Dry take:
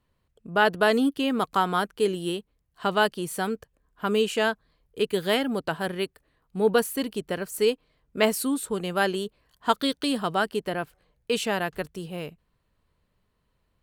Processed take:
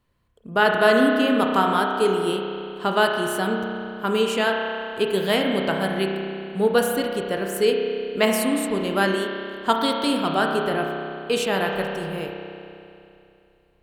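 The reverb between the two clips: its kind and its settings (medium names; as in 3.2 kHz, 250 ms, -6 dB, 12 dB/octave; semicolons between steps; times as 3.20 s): spring tank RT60 2.7 s, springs 31 ms, chirp 40 ms, DRR 1 dB; trim +2 dB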